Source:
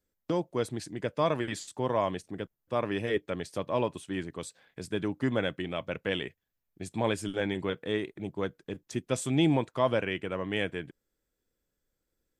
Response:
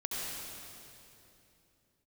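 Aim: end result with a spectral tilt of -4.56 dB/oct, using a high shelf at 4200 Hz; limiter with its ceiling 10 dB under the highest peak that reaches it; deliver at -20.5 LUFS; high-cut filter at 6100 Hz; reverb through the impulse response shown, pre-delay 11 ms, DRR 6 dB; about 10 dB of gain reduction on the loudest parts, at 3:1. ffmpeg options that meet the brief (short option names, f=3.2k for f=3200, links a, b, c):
-filter_complex "[0:a]lowpass=6.1k,highshelf=f=4.2k:g=8.5,acompressor=threshold=-34dB:ratio=3,alimiter=level_in=6dB:limit=-24dB:level=0:latency=1,volume=-6dB,asplit=2[a][b];[1:a]atrim=start_sample=2205,adelay=11[c];[b][c]afir=irnorm=-1:irlink=0,volume=-10.5dB[d];[a][d]amix=inputs=2:normalize=0,volume=21.5dB"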